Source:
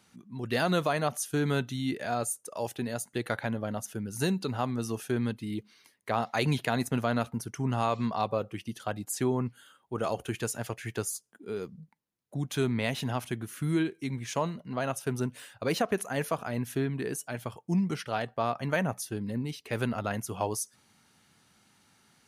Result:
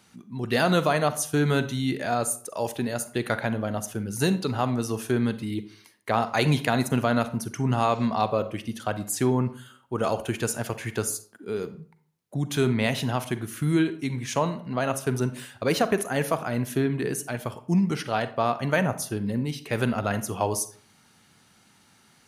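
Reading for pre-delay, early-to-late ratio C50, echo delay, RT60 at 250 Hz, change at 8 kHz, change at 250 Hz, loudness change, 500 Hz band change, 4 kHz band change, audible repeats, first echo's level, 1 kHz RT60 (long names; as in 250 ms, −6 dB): 37 ms, 14.0 dB, no echo audible, 0.50 s, +5.0 dB, +5.5 dB, +5.5 dB, +5.5 dB, +5.0 dB, no echo audible, no echo audible, 0.50 s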